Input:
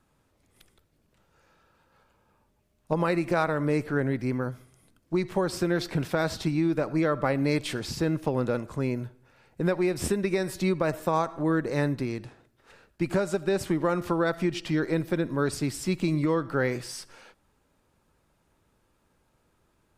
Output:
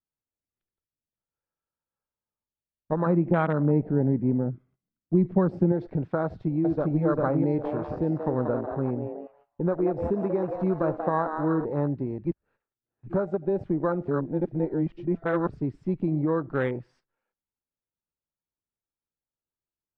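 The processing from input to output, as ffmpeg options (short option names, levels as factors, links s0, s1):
-filter_complex "[0:a]asettb=1/sr,asplit=3[s0][s1][s2];[s0]atrim=end=3.064[s3];[s1]atrim=start=3.06:end=5.72,asetpts=PTS-STARTPTS,afade=t=in:d=0.004:c=qsin,afade=t=out:st=2.656:d=0.004:c=qsin,equalizer=f=190:w=1.5:g=9.5[s4];[s2]atrim=start=5.716[s5];[s3][s4]acrossfade=d=0.004:c1=hsin:c2=qsin[s6];[s6][s5]acrossfade=d=0.004:c1=qsin:c2=hsin,asplit=2[s7][s8];[s8]afade=t=in:st=6.24:d=0.01,afade=t=out:st=7.04:d=0.01,aecho=0:1:400|800|1200|1600:0.944061|0.283218|0.0849655|0.0254896[s9];[s7][s9]amix=inputs=2:normalize=0,asplit=3[s10][s11][s12];[s10]afade=t=out:st=7.63:d=0.02[s13];[s11]asplit=7[s14][s15][s16][s17][s18][s19][s20];[s15]adelay=184,afreqshift=150,volume=0.447[s21];[s16]adelay=368,afreqshift=300,volume=0.209[s22];[s17]adelay=552,afreqshift=450,volume=0.0989[s23];[s18]adelay=736,afreqshift=600,volume=0.0462[s24];[s19]adelay=920,afreqshift=750,volume=0.0219[s25];[s20]adelay=1104,afreqshift=900,volume=0.0102[s26];[s14][s21][s22][s23][s24][s25][s26]amix=inputs=7:normalize=0,afade=t=in:st=7.63:d=0.02,afade=t=out:st=11.64:d=0.02[s27];[s12]afade=t=in:st=11.64:d=0.02[s28];[s13][s27][s28]amix=inputs=3:normalize=0,asplit=5[s29][s30][s31][s32][s33];[s29]atrim=end=12.252[s34];[s30]atrim=start=12.248:end=13.072,asetpts=PTS-STARTPTS,areverse[s35];[s31]atrim=start=13.068:end=14.082[s36];[s32]atrim=start=14.078:end=15.492,asetpts=PTS-STARTPTS,areverse[s37];[s33]atrim=start=15.488[s38];[s34][s35]acrossfade=d=0.004:c1=hsin:c2=hsin[s39];[s39][s36]acrossfade=d=0.004:c1=hsin:c2=hsin[s40];[s40][s37]acrossfade=d=0.004:c1=hsin:c2=hsin[s41];[s41][s38]acrossfade=d=0.004:c1=hsin:c2=hsin,lowpass=1900,afwtdn=0.0316,agate=range=0.178:threshold=0.00141:ratio=16:detection=peak"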